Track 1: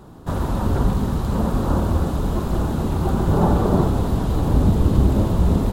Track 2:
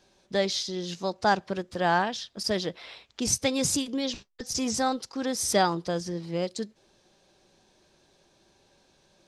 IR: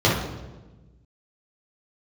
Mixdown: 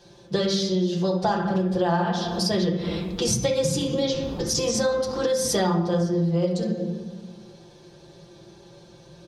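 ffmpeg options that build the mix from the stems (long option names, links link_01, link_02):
-filter_complex "[0:a]acrusher=bits=8:mix=0:aa=0.000001,adelay=950,volume=-19.5dB[link_01];[1:a]acontrast=67,aecho=1:1:5.8:0.72,volume=-2.5dB,asplit=3[link_02][link_03][link_04];[link_03]volume=-17dB[link_05];[link_04]apad=whole_len=294274[link_06];[link_01][link_06]sidechaincompress=threshold=-34dB:ratio=8:attack=16:release=162[link_07];[2:a]atrim=start_sample=2205[link_08];[link_05][link_08]afir=irnorm=-1:irlink=0[link_09];[link_07][link_02][link_09]amix=inputs=3:normalize=0,acompressor=threshold=-21dB:ratio=5"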